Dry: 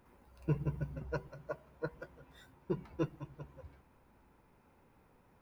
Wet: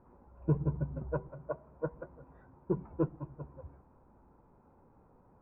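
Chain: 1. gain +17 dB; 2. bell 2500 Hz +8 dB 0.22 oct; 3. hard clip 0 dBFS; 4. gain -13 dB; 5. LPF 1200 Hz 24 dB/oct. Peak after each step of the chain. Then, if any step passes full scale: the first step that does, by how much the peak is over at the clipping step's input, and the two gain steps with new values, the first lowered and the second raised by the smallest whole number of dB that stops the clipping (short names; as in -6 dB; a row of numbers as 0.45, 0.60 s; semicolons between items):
-5.0, -5.0, -5.0, -18.0, -18.0 dBFS; no overload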